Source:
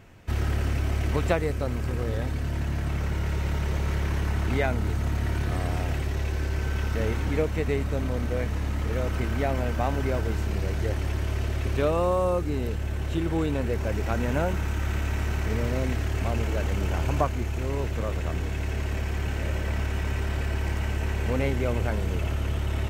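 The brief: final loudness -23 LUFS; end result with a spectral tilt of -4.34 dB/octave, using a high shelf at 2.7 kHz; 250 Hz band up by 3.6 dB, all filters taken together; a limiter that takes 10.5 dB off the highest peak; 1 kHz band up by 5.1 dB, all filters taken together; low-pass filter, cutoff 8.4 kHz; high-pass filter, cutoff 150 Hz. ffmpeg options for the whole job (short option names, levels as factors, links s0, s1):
-af "highpass=150,lowpass=8400,equalizer=f=250:t=o:g=5,equalizer=f=1000:t=o:g=7.5,highshelf=f=2700:g=-7.5,volume=2.24,alimiter=limit=0.316:level=0:latency=1"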